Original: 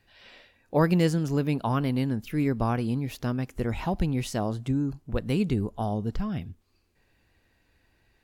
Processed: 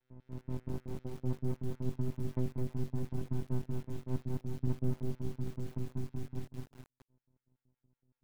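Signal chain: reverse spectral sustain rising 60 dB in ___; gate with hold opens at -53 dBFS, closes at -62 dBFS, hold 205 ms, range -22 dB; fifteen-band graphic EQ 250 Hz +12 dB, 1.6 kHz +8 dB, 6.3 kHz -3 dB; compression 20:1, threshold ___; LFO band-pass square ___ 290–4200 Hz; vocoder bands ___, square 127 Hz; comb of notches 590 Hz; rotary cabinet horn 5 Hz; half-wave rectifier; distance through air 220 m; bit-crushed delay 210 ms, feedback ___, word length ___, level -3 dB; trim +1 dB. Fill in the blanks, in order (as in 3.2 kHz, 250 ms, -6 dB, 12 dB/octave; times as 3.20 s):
1.40 s, -21 dBFS, 5.3 Hz, 4, 35%, 9-bit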